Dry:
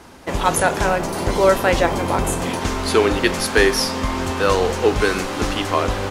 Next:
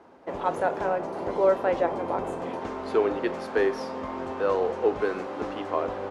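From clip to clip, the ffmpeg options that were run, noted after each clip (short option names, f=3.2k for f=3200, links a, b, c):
-af "bandpass=f=560:t=q:w=0.92:csg=0,volume=-5.5dB"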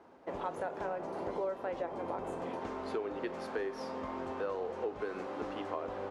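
-af "acompressor=threshold=-28dB:ratio=5,volume=-5.5dB"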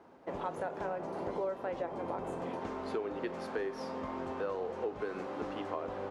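-af "equalizer=f=150:w=1.3:g=4"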